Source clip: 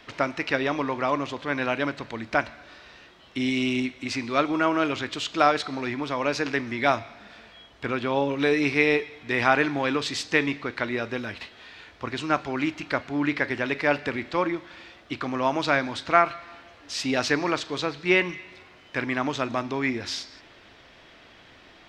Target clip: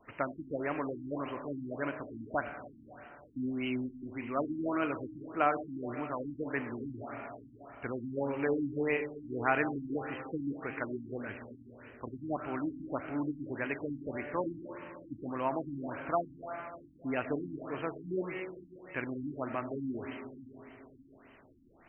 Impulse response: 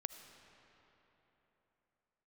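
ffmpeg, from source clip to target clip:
-filter_complex "[1:a]atrim=start_sample=2205[s0];[0:a][s0]afir=irnorm=-1:irlink=0,afftfilt=real='re*lt(b*sr/1024,320*pow(3200/320,0.5+0.5*sin(2*PI*1.7*pts/sr)))':imag='im*lt(b*sr/1024,320*pow(3200/320,0.5+0.5*sin(2*PI*1.7*pts/sr)))':win_size=1024:overlap=0.75,volume=0.531"

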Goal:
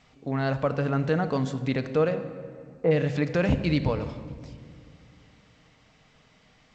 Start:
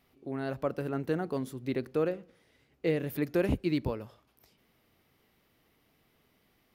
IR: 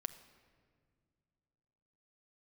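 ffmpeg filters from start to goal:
-filter_complex "[0:a]asplit=3[s0][s1][s2];[s0]afade=t=out:st=2.14:d=0.02[s3];[s1]lowpass=f=970:t=q:w=1.9,afade=t=in:st=2.14:d=0.02,afade=t=out:st=2.9:d=0.02[s4];[s2]afade=t=in:st=2.9:d=0.02[s5];[s3][s4][s5]amix=inputs=3:normalize=0,equalizer=f=350:t=o:w=0.43:g=-12[s6];[1:a]atrim=start_sample=2205,asetrate=42777,aresample=44100[s7];[s6][s7]afir=irnorm=-1:irlink=0,asplit=2[s8][s9];[s9]alimiter=level_in=2.37:limit=0.0631:level=0:latency=1:release=59,volume=0.422,volume=1.19[s10];[s8][s10]amix=inputs=2:normalize=0,volume=2" -ar 16000 -c:a g722

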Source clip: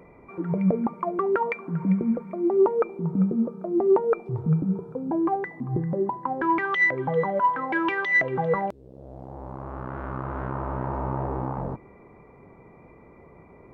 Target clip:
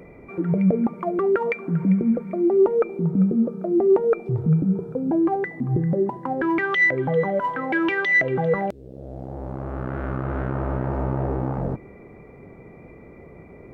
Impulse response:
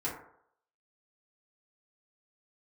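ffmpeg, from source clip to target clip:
-filter_complex "[0:a]equalizer=f=1000:w=2.4:g=-10.5,asplit=2[s0][s1];[s1]alimiter=limit=0.0668:level=0:latency=1:release=123,volume=1.19[s2];[s0][s2]amix=inputs=2:normalize=0"

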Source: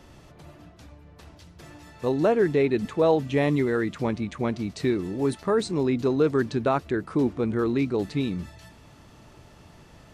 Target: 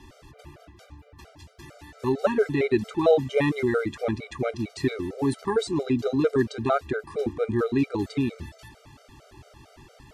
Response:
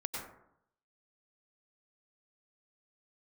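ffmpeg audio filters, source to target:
-af "equalizer=f=180:w=3.4:g=-10,afftfilt=real='re*gt(sin(2*PI*4.4*pts/sr)*(1-2*mod(floor(b*sr/1024/400),2)),0)':imag='im*gt(sin(2*PI*4.4*pts/sr)*(1-2*mod(floor(b*sr/1024/400),2)),0)':win_size=1024:overlap=0.75,volume=1.58"

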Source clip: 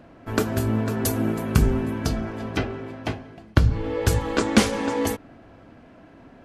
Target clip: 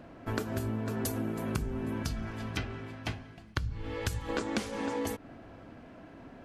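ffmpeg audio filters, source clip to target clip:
-filter_complex "[0:a]asettb=1/sr,asplit=3[s0][s1][s2];[s0]atrim=end=2.034[s3];[s1]atrim=start=2.03:end=4.29,asetpts=PTS-STARTPTS,afade=t=in:d=0.004:c=qsin,afade=t=out:st=2.256:d=0.004:c=qsin,equalizer=f=460:w=0.54:g=-10[s4];[s2]atrim=start=4.286[s5];[s3][s4]acrossfade=d=0.004:c1=hsin:c2=qsin[s6];[s6][s5]acrossfade=d=0.004:c1=qsin:c2=hsin,acompressor=threshold=0.0398:ratio=10,volume=0.841"

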